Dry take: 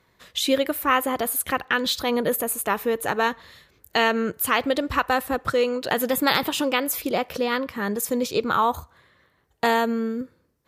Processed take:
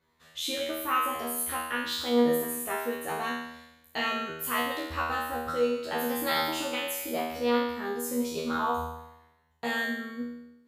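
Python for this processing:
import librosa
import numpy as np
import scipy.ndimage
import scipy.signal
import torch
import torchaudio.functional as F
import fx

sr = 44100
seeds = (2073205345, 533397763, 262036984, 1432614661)

y = fx.comb_fb(x, sr, f0_hz=80.0, decay_s=0.89, harmonics='all', damping=0.0, mix_pct=100)
y = y * 10.0 ** (6.5 / 20.0)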